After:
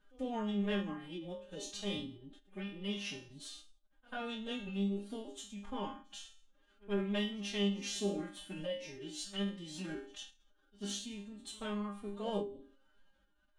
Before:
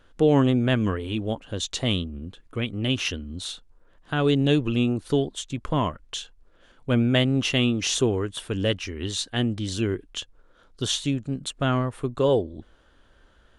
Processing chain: resonator bank B2 sus4, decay 0.47 s; reverse echo 91 ms -23.5 dB; formant-preserving pitch shift +8.5 st; gain +2.5 dB

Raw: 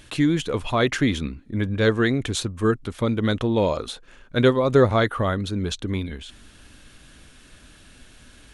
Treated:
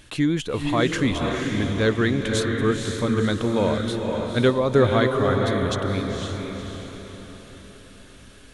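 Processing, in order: diffused feedback echo 0.504 s, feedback 46%, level -3.5 dB; gain -1.5 dB

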